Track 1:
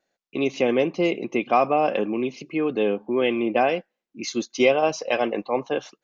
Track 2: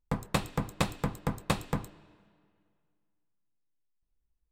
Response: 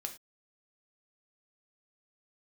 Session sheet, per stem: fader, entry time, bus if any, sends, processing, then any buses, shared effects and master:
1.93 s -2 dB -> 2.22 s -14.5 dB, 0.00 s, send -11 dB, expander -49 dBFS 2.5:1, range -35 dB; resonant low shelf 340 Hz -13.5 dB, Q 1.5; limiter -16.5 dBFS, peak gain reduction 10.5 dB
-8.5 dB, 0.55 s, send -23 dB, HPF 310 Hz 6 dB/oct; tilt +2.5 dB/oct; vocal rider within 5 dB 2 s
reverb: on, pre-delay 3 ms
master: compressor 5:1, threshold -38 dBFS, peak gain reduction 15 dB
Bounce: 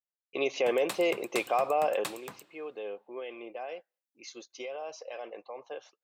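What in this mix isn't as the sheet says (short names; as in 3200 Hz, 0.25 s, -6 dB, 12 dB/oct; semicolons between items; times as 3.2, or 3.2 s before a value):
stem 1: send off; master: missing compressor 5:1, threshold -38 dBFS, peak gain reduction 15 dB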